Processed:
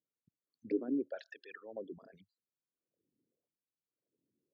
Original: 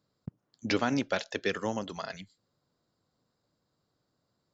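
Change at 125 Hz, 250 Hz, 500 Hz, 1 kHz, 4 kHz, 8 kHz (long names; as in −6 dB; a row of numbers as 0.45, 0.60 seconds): −22.0 dB, −5.5 dB, −7.5 dB, −21.5 dB, −25.0 dB, can't be measured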